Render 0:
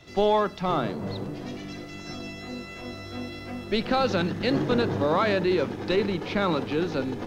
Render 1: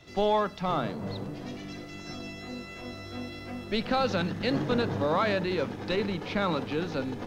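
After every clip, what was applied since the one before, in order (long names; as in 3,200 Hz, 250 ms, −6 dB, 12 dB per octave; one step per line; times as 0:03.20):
dynamic equaliser 360 Hz, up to −6 dB, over −42 dBFS, Q 4.3
level −2.5 dB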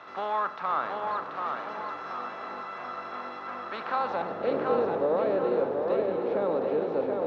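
compressor on every frequency bin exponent 0.6
band-pass filter sweep 1,200 Hz → 500 Hz, 0:03.88–0:04.54
tape delay 733 ms, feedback 48%, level −3 dB, low-pass 4,600 Hz
level +2 dB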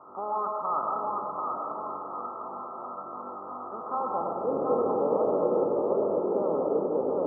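Chebyshev low-pass with heavy ripple 1,300 Hz, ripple 3 dB
comb and all-pass reverb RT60 1.6 s, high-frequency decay 0.55×, pre-delay 65 ms, DRR 2 dB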